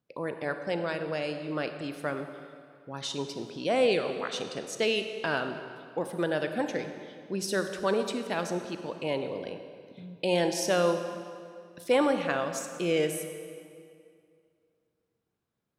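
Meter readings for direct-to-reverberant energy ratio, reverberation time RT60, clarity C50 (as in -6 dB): 7.0 dB, 2.3 s, 7.5 dB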